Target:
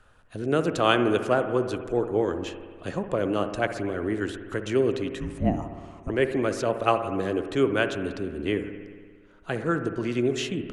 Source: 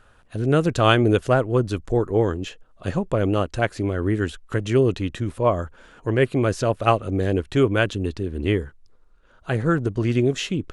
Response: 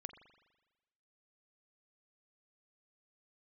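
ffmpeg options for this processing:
-filter_complex "[0:a]acrossover=split=190|760[s0][s1][s2];[s0]acompressor=threshold=0.0141:ratio=6[s3];[s3][s1][s2]amix=inputs=3:normalize=0,asettb=1/sr,asplit=3[s4][s5][s6];[s4]atrim=end=5.204[s7];[s5]atrim=start=5.2:end=6.1,asetpts=PTS-STARTPTS,afade=t=in:d=0.004:c=qsin,afade=t=out:st=0.896:d=0.004:c=qsin,afreqshift=-390[s8];[s6]atrim=start=6.096[s9];[s7][s8]acrossfade=d=0.004:c1=hsin:c2=qsin[s10];[s10][s9]acrossfade=d=0.004:c1=qsin:c2=hsin[s11];[1:a]atrim=start_sample=2205,asetrate=31311,aresample=44100[s12];[s11][s12]afir=irnorm=-1:irlink=0"

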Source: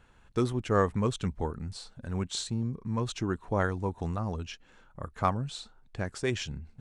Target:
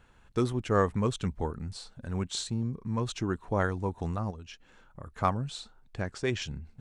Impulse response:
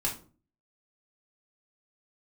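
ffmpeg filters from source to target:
-filter_complex "[0:a]asettb=1/sr,asplit=3[s0][s1][s2];[s0]atrim=end=4.304[s3];[s1]atrim=start=4.3:end=5.06,asetpts=PTS-STARTPTS,afade=t=in:d=0.004:c=qsin,afade=t=out:st=0.756:d=0.004:c=qsin,acompressor=threshold=0.01:ratio=12[s4];[s2]atrim=start=5.056[s5];[s3][s4]acrossfade=d=0.004:c1=hsin:c2=qsin[s6];[s6][s5]acrossfade=d=0.004:c1=qsin:c2=hsin,asettb=1/sr,asplit=3[s7][s8][s9];[s7]atrim=end=6.024[s10];[s8]atrim=start=6.02:end=6.42,asetpts=PTS-STARTPTS,afade=t=in:d=0.004:c=qsin,afade=t=out:st=0.396:d=0.004:c=qsin,lowpass=6900[s11];[s9]atrim=start=6.416[s12];[s10][s11]acrossfade=d=0.004:c1=hsin:c2=qsin[s13];[s13][s12]acrossfade=d=0.004:c1=qsin:c2=hsin"

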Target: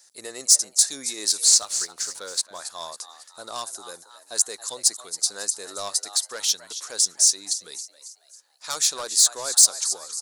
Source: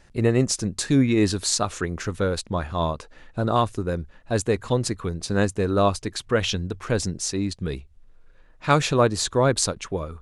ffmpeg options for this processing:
-filter_complex "[0:a]highpass=690,asplit=5[s0][s1][s2][s3][s4];[s1]adelay=274,afreqshift=120,volume=0.2[s5];[s2]adelay=548,afreqshift=240,volume=0.0923[s6];[s3]adelay=822,afreqshift=360,volume=0.0422[s7];[s4]adelay=1096,afreqshift=480,volume=0.0195[s8];[s0][s5][s6][s7][s8]amix=inputs=5:normalize=0,asoftclip=type=tanh:threshold=0.141,aexciter=amount=12:drive=2.9:freq=4000,asettb=1/sr,asplit=3[s9][s10][s11];[s9]atrim=end=1.454[s12];[s10]atrim=start=1.45:end=2.59,asetpts=PTS-STARTPTS,afade=t=in:d=0.004:c=qsin,afade=t=out:st=1.136:d=0.004:c=qsin,adynamicsmooth=sensitivity=7:basefreq=5400[s13];[s11]atrim=start=2.586[s14];[s12][s13]acrossfade=d=0.004:c1=hsin:c2=qsin[s15];[s15][s14]acrossfade=d=0.004:c1=qsin:c2=hsin,volume=0.398"

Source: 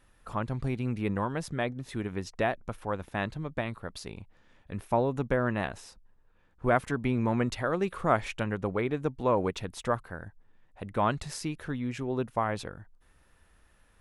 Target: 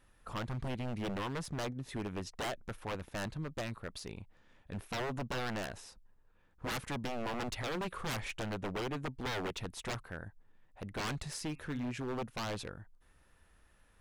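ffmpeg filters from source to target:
-filter_complex "[0:a]asettb=1/sr,asplit=3[s0][s1][s2];[s0]atrim=end=11.364[s3];[s1]atrim=start=11.36:end=11.92,asetpts=PTS-STARTPTS,afade=t=in:d=0.004:c=qsin,afade=t=out:st=0.556:d=0.004:c=qsin,bandreject=f=135.8:t=h:w=4,bandreject=f=271.6:t=h:w=4,bandreject=f=407.4:t=h:w=4,bandreject=f=543.2:t=h:w=4,bandreject=f=679:t=h:w=4,bandreject=f=814.8:t=h:w=4,bandreject=f=950.6:t=h:w=4,bandreject=f=1086.4:t=h:w=4,bandreject=f=1222.2:t=h:w=4,bandreject=f=1358:t=h:w=4,bandreject=f=1493.8:t=h:w=4,bandreject=f=1629.6:t=h:w=4,bandreject=f=1765.4:t=h:w=4,bandreject=f=1901.2:t=h:w=4,bandreject=f=2037:t=h:w=4,bandreject=f=2172.8:t=h:w=4,bandreject=f=2308.6:t=h:w=4,bandreject=f=2444.4:t=h:w=4,bandreject=f=2580.2:t=h:w=4,bandreject=f=2716:t=h:w=4[s4];[s2]atrim=start=11.916[s5];[s3][s4]acrossfade=d=0.004:c1=hsin:c2=qsin[s6];[s6][s5]acrossfade=d=0.004:c1=qsin:c2=hsin,aeval=exprs='0.0376*(abs(mod(val(0)/0.0376+3,4)-2)-1)':c=same,volume=0.708"

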